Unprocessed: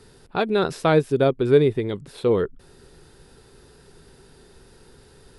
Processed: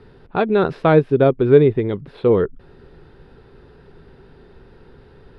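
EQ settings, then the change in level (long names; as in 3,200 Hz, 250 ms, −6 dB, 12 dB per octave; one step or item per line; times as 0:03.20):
high-frequency loss of the air 380 metres
+5.5 dB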